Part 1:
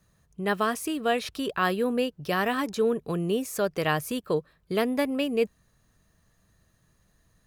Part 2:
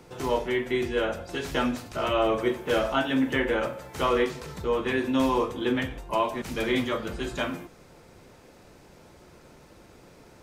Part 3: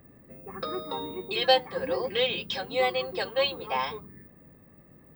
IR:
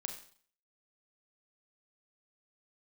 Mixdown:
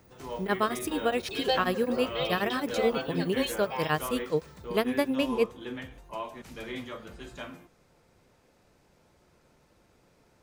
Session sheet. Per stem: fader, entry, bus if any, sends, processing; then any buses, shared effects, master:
+0.5 dB, 0.00 s, no send, beating tremolo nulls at 9.4 Hz
-11.0 dB, 0.00 s, no send, bell 340 Hz -2.5 dB
-7.0 dB, 0.00 s, no send, dry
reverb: off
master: dry

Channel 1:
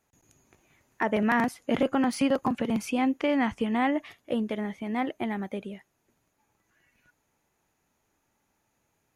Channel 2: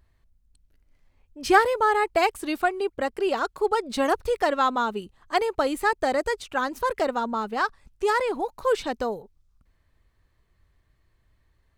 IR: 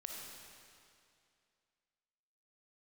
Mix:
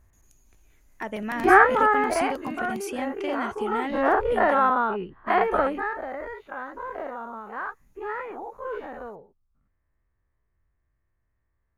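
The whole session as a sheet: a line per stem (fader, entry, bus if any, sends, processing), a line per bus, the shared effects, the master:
-7.0 dB, 0.00 s, muted 4.7–5.27, no send, dry
1.97 s -2.5 dB -> 2.31 s -10.5 dB -> 3.6 s -10.5 dB -> 4.08 s -3 dB -> 5.59 s -3 dB -> 5.99 s -14.5 dB, 0.00 s, no send, spectral dilation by 0.12 s; LPF 2000 Hz 24 dB/oct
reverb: off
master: high shelf 4500 Hz +11.5 dB

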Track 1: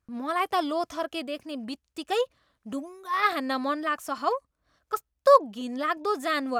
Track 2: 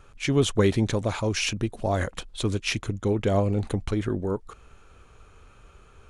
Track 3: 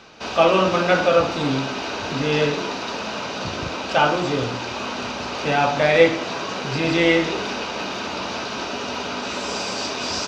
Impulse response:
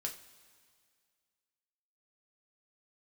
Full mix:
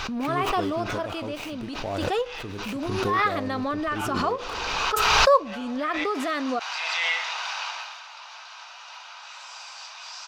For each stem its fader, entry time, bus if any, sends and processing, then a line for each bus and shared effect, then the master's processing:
-2.5 dB, 0.00 s, send -11.5 dB, LPF 3700 Hz 6 dB/oct
-9.0 dB, 0.00 s, send -6.5 dB, median filter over 25 samples; low shelf 390 Hz -8.5 dB
5.9 s -10.5 dB -> 6.3 s -2 dB -> 7.69 s -2 dB -> 8.04 s -13 dB, 0.00 s, no send, steep high-pass 800 Hz 36 dB/oct; auto duck -12 dB, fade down 0.25 s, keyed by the first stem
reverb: on, pre-delay 3 ms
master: backwards sustainer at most 22 dB/s

